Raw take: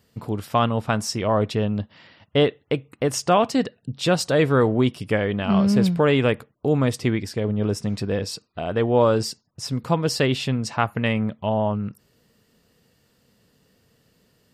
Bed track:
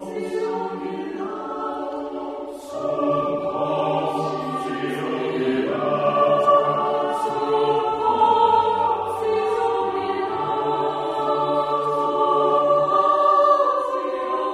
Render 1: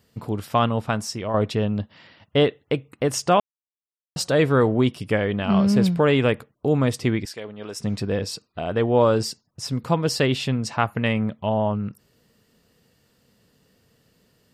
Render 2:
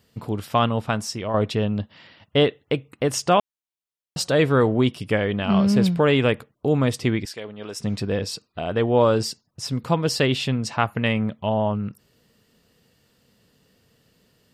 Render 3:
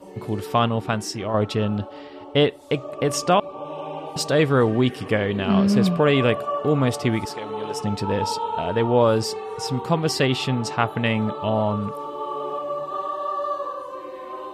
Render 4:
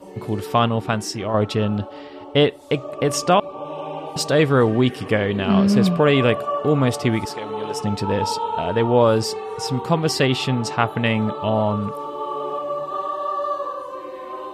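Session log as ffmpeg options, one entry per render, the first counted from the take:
ffmpeg -i in.wav -filter_complex "[0:a]asettb=1/sr,asplit=3[link_01][link_02][link_03];[link_01]atrim=end=7.254[link_04];[link_02]atrim=start=7.25:end=7.8,asetpts=PTS-STARTPTS,afade=type=in:duration=0.004:curve=qsin,afade=type=out:start_time=0.546:duration=0.004:curve=qsin,highpass=frequency=1200:poles=1[link_05];[link_03]atrim=start=7.796[link_06];[link_04][link_05]acrossfade=duration=0.004:curve1=hsin:curve2=qsin[link_07];[link_07][link_06]acrossfade=duration=0.004:curve1=qsin:curve2=hsin,asplit=4[link_08][link_09][link_10][link_11];[link_08]atrim=end=1.34,asetpts=PTS-STARTPTS,afade=type=out:start_time=0.72:duration=0.62:silence=0.473151[link_12];[link_09]atrim=start=1.34:end=3.4,asetpts=PTS-STARTPTS,afade=type=in:duration=0.004:curve=hsin:silence=0.473151,afade=type=out:start_time=2.056:duration=0.004:curve=hsin[link_13];[link_10]atrim=start=3.4:end=4.16,asetpts=PTS-STARTPTS,volume=0[link_14];[link_11]atrim=start=4.16,asetpts=PTS-STARTPTS,afade=type=in:duration=0.004:curve=hsin[link_15];[link_12][link_13][link_14][link_15]concat=n=4:v=0:a=1" out.wav
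ffmpeg -i in.wav -af "equalizer=frequency=3200:width=1.5:gain=2.5" out.wav
ffmpeg -i in.wav -i bed.wav -filter_complex "[1:a]volume=-10.5dB[link_01];[0:a][link_01]amix=inputs=2:normalize=0" out.wav
ffmpeg -i in.wav -af "volume=2dB" out.wav

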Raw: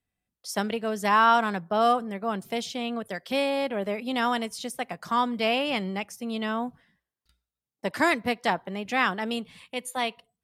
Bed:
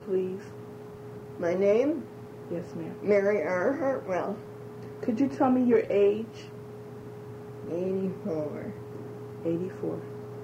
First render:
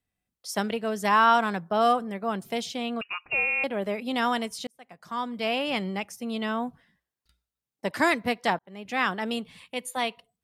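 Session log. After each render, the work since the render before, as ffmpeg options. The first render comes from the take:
ffmpeg -i in.wav -filter_complex "[0:a]asettb=1/sr,asplit=3[link_01][link_02][link_03];[link_01]atrim=end=3.014[link_04];[link_02]atrim=start=3.01:end=3.64,asetpts=PTS-STARTPTS,afade=type=in:duration=0.004:curve=qsin,afade=type=out:start_time=0.626:duration=0.004:curve=qsin,lowpass=frequency=2600:width_type=q:width=0.5098,lowpass=frequency=2600:width_type=q:width=0.6013,lowpass=frequency=2600:width_type=q:width=0.9,lowpass=frequency=2600:width_type=q:width=2.563,afreqshift=-3000[link_05];[link_03]atrim=start=3.636[link_06];[link_04][link_05]acrossfade=duration=0.004:curve1=hsin:curve2=qsin[link_07];[link_07][link_06]acrossfade=duration=0.004:curve1=qsin:curve2=hsin,asplit=3[link_08][link_09][link_10];[link_08]atrim=end=4.67,asetpts=PTS-STARTPTS,afade=type=out:start_time=4.666:duration=0.004:curve=hsin[link_11];[link_09]atrim=start=4.67:end=8.59,asetpts=PTS-STARTPTS,afade=type=in:duration=1.12,afade=type=out:start_time=3.916:duration=0.004:curve=hsin[link_12];[link_10]atrim=start=8.59,asetpts=PTS-STARTPTS,afade=type=in:duration=0.7:curve=qsin[link_13];[link_11][link_12][link_13]concat=n=3:v=0:a=1" out.wav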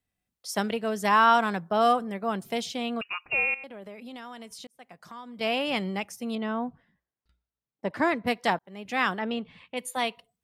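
ffmpeg -i in.wav -filter_complex "[0:a]asettb=1/sr,asplit=3[link_01][link_02][link_03];[link_01]atrim=end=3.544[link_04];[link_02]atrim=start=3.54:end=5.41,asetpts=PTS-STARTPTS,afade=type=in:duration=0.004:curve=qsin,afade=type=out:start_time=1.866:duration=0.004:curve=qsin,acompressor=threshold=-41dB:ratio=4:attack=3.2:release=140:knee=1:detection=peak[link_05];[link_03]atrim=start=5.406[link_06];[link_04][link_05]acrossfade=duration=0.004:curve1=hsin:curve2=qsin[link_07];[link_07][link_06]acrossfade=duration=0.004:curve1=qsin:curve2=hsin,asettb=1/sr,asplit=3[link_08][link_09][link_10];[link_08]atrim=end=6.354[link_11];[link_09]atrim=start=6.35:end=8.27,asetpts=PTS-STARTPTS,afade=type=in:duration=0.004:curve=qsin,afade=type=out:start_time=1.916:duration=0.004:curve=qsin,lowpass=frequency=1300:poles=1[link_12];[link_10]atrim=start=8.266[link_13];[link_11][link_12]acrossfade=duration=0.004:curve1=hsin:curve2=qsin[link_14];[link_14][link_13]acrossfade=duration=0.004:curve1=qsin:curve2=hsin,asplit=3[link_15][link_16][link_17];[link_15]afade=type=out:start_time=9.18:duration=0.02[link_18];[link_16]lowpass=2800,afade=type=in:start_time=9.18:duration=0.02,afade=type=out:start_time=9.76:duration=0.02[link_19];[link_17]afade=type=in:start_time=9.76:duration=0.02[link_20];[link_18][link_19][link_20]amix=inputs=3:normalize=0" out.wav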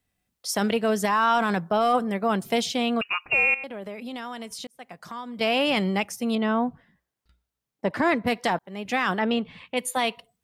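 ffmpeg -i in.wav -af "acontrast=66,alimiter=limit=-13dB:level=0:latency=1:release=12" out.wav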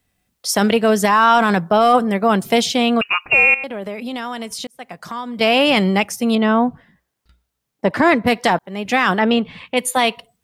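ffmpeg -i in.wav -af "volume=8.5dB" out.wav

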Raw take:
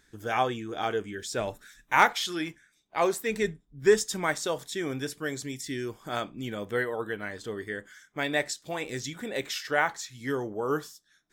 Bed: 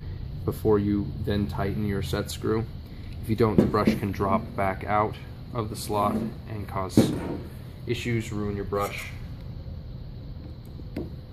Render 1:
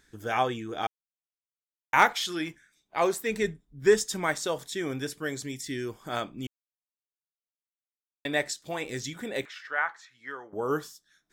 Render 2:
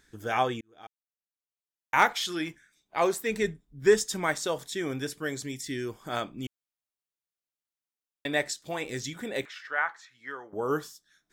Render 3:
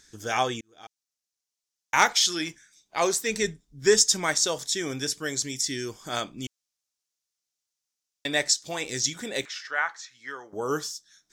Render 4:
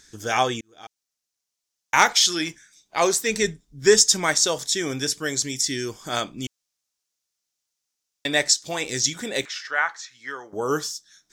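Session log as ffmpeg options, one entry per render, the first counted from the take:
ffmpeg -i in.wav -filter_complex "[0:a]asettb=1/sr,asplit=3[link_01][link_02][link_03];[link_01]atrim=end=9.454[link_04];[link_02]atrim=start=9.45:end=10.53,asetpts=PTS-STARTPTS,afade=type=in:duration=0.004:curve=qsin,afade=type=out:start_time=1.076:duration=0.004:curve=qsin,bandpass=frequency=1400:width_type=q:width=1.6[link_05];[link_03]atrim=start=10.526[link_06];[link_04][link_05]acrossfade=duration=0.004:curve1=hsin:curve2=qsin[link_07];[link_07][link_06]acrossfade=duration=0.004:curve1=qsin:curve2=hsin,asplit=5[link_08][link_09][link_10][link_11][link_12];[link_08]atrim=end=0.87,asetpts=PTS-STARTPTS,afade=type=out:start_time=0.866:duration=0.004:curve=hsin[link_13];[link_09]atrim=start=0.87:end=1.93,asetpts=PTS-STARTPTS,volume=0[link_14];[link_10]atrim=start=1.93:end=6.47,asetpts=PTS-STARTPTS,afade=type=in:duration=0.004:curve=hsin,afade=type=out:start_time=4.536:duration=0.004:curve=hsin[link_15];[link_11]atrim=start=6.47:end=8.25,asetpts=PTS-STARTPTS,volume=0[link_16];[link_12]atrim=start=8.25,asetpts=PTS-STARTPTS,afade=type=in:duration=0.004:curve=hsin[link_17];[link_13][link_14][link_15][link_16][link_17]concat=n=5:v=0:a=1" out.wav
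ffmpeg -i in.wav -filter_complex "[0:a]asplit=2[link_01][link_02];[link_01]atrim=end=0.61,asetpts=PTS-STARTPTS,afade=type=out:start_time=0.606:duration=0.004:curve=hsin[link_03];[link_02]atrim=start=0.61,asetpts=PTS-STARTPTS,afade=type=in:duration=1.67[link_04];[link_03][link_04]concat=n=2:v=0:a=1" out.wav
ffmpeg -i in.wav -af "equalizer=frequency=5900:width_type=o:width=1.3:gain=15" out.wav
ffmpeg -i in.wav -af "volume=4dB,alimiter=limit=-2dB:level=0:latency=1" out.wav

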